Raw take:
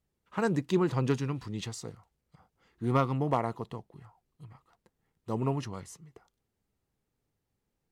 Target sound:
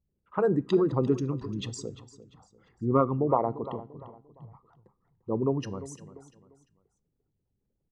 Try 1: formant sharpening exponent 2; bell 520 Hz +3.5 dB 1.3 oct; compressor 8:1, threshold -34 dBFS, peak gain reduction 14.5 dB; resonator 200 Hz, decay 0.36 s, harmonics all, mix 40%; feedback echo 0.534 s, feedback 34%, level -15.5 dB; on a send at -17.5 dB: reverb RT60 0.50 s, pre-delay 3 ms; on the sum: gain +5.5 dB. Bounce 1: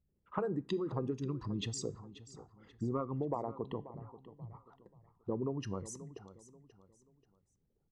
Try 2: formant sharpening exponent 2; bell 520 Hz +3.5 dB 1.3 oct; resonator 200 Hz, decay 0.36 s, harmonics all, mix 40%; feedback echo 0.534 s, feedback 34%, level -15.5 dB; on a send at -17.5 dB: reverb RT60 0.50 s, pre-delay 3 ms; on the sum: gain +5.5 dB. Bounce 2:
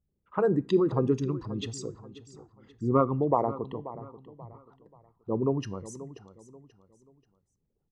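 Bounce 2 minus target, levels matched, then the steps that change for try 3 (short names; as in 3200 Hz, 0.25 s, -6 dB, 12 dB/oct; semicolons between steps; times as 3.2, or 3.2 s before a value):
echo 0.188 s late
change: feedback echo 0.346 s, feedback 34%, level -15.5 dB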